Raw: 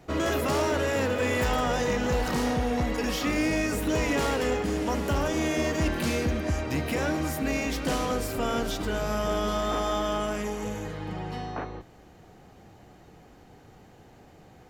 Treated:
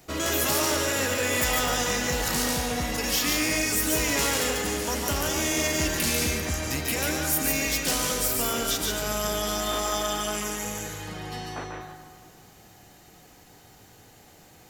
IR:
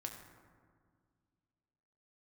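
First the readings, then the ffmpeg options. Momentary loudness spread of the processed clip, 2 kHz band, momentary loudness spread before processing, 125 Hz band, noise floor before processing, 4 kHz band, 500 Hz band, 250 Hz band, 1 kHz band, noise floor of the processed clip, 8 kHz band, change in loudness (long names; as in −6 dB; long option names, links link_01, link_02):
10 LU, +3.5 dB, 8 LU, −2.5 dB, −53 dBFS, +7.5 dB, −2.0 dB, −3.0 dB, −0.5 dB, −53 dBFS, +12.5 dB, +2.5 dB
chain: -filter_complex "[0:a]crystalizer=i=5:c=0,asplit=2[link_01][link_02];[1:a]atrim=start_sample=2205,lowshelf=frequency=460:gain=-8.5,adelay=143[link_03];[link_02][link_03]afir=irnorm=-1:irlink=0,volume=1.5dB[link_04];[link_01][link_04]amix=inputs=2:normalize=0,volume=-4dB"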